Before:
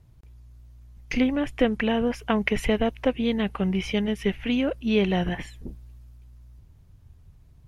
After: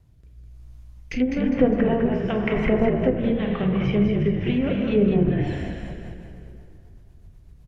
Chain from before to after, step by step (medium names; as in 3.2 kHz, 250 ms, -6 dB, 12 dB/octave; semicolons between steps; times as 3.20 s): plate-style reverb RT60 2.6 s, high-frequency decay 0.7×, DRR 2 dB; rotary cabinet horn 1 Hz, later 8 Hz, at 5.39 s; low-pass that closes with the level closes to 920 Hz, closed at -18 dBFS; on a send: frequency-shifting echo 203 ms, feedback 39%, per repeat -49 Hz, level -5 dB; on the sum: trim +1.5 dB